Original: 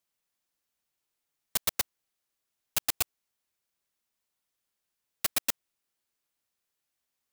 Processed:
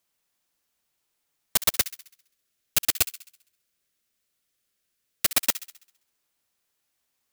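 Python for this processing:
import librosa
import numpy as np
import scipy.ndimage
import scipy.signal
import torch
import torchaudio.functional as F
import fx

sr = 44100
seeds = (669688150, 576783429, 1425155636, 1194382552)

y = fx.peak_eq(x, sr, hz=900.0, db=-10.5, octaves=0.57, at=(1.75, 5.29))
y = fx.echo_wet_highpass(y, sr, ms=66, feedback_pct=51, hz=1800.0, wet_db=-14)
y = F.gain(torch.from_numpy(y), 6.5).numpy()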